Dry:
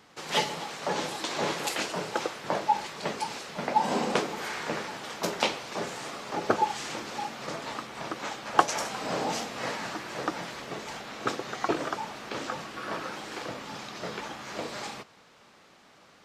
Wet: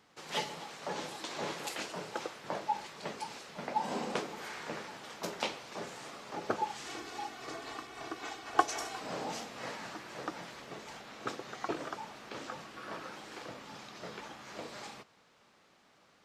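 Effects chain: 6.86–9 comb 2.7 ms, depth 77%; gain -8.5 dB

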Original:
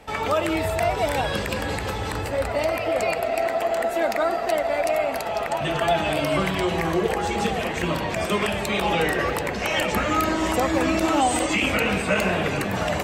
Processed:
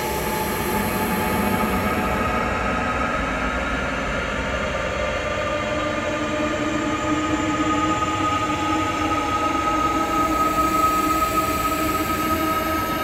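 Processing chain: Paulstretch 41×, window 0.10 s, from 9.93

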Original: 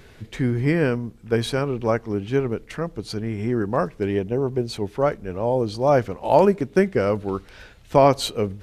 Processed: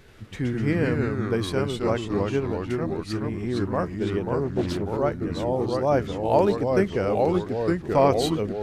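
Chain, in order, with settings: echoes that change speed 82 ms, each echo -2 st, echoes 3; 4.44–4.86 Doppler distortion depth 0.47 ms; gain -4.5 dB

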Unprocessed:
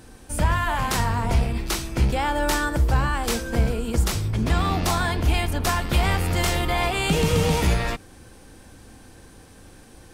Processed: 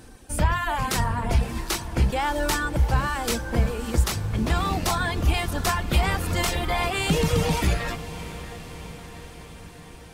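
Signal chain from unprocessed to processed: reverb removal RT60 0.89 s; on a send: diffused feedback echo 0.634 s, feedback 64%, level -14 dB

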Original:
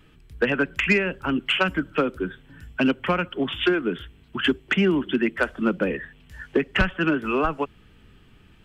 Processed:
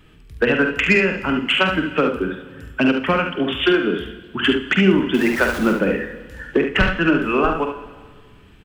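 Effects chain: 5.14–5.73 zero-crossing step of -29 dBFS; early reflections 47 ms -8.5 dB, 72 ms -6.5 dB; Schroeder reverb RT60 1.5 s, DRR 11.5 dB; gain +3.5 dB

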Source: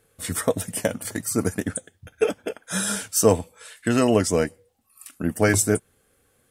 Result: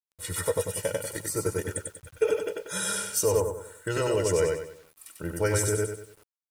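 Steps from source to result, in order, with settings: on a send: feedback echo 95 ms, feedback 38%, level -3.5 dB; on the sum: limiter -9 dBFS, peak gain reduction 6.5 dB; comb 2.1 ms, depth 100%; requantised 8-bit, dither none; 3.4–3.88 band shelf 3400 Hz -13 dB; gain -8 dB

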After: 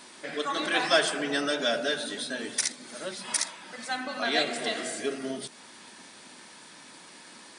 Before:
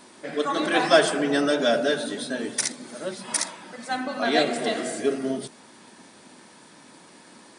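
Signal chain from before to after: tilt shelf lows -6.5 dB, about 1400 Hz; in parallel at -0.5 dB: compressor, threshold -37 dBFS, peak gain reduction 22 dB; on the sum: high shelf 5300 Hz -7.5 dB; gain -4 dB

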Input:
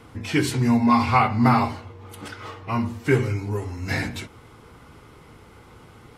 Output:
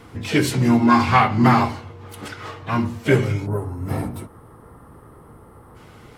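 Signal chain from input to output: spectral gain 3.47–5.76, 1400–8000 Hz -17 dB; harmoniser +5 st -14 dB, +7 st -13 dB; gain +2.5 dB

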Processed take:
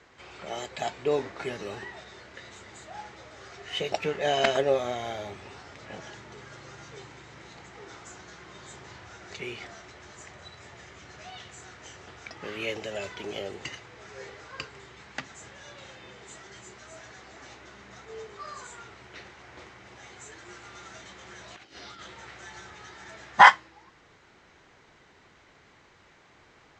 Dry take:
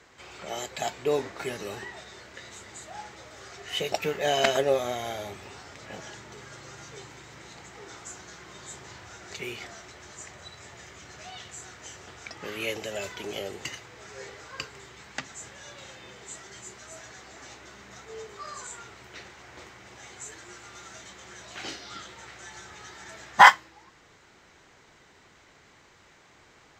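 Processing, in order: 20.45–22.7 negative-ratio compressor -43 dBFS, ratio -0.5; air absorption 82 m

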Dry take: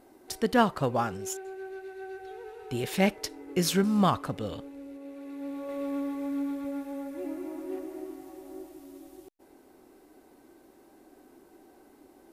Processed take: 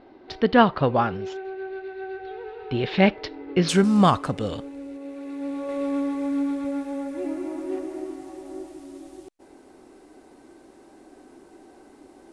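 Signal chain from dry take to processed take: steep low-pass 4300 Hz 36 dB/oct, from 3.68 s 10000 Hz; gain +6.5 dB

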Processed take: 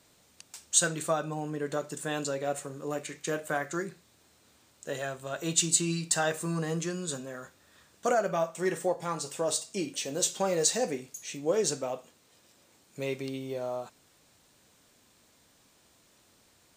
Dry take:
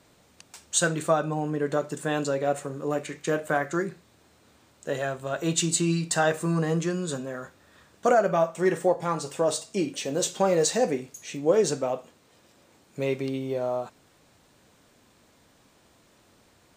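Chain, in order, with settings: high shelf 3000 Hz +9 dB; gain -6.5 dB

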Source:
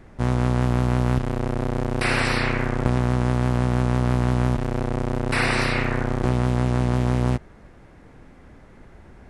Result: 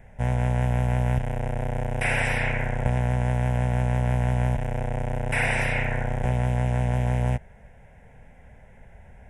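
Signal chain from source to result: fixed phaser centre 1200 Hz, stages 6

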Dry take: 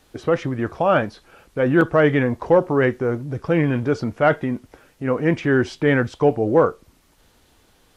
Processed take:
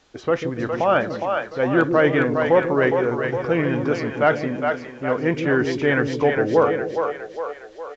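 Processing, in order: low shelf 240 Hz -7.5 dB; on a send: split-band echo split 450 Hz, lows 0.144 s, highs 0.411 s, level -4.5 dB; on the sum: downsampling 16000 Hz

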